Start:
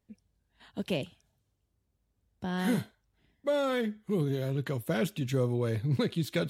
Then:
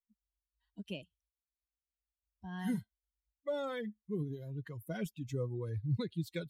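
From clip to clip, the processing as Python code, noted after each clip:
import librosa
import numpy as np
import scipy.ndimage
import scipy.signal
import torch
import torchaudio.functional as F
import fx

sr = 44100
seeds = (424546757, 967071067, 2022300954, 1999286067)

y = fx.bin_expand(x, sr, power=2.0)
y = fx.low_shelf(y, sr, hz=150.0, db=8.5)
y = y * librosa.db_to_amplitude(-6.5)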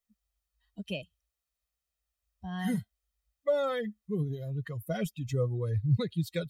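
y = x + 0.49 * np.pad(x, (int(1.6 * sr / 1000.0), 0))[:len(x)]
y = y * librosa.db_to_amplitude(6.0)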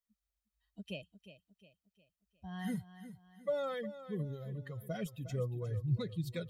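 y = fx.echo_feedback(x, sr, ms=357, feedback_pct=43, wet_db=-13.0)
y = y * librosa.db_to_amplitude(-7.0)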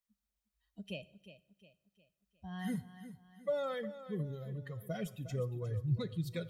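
y = fx.rev_plate(x, sr, seeds[0], rt60_s=0.82, hf_ratio=0.95, predelay_ms=0, drr_db=16.5)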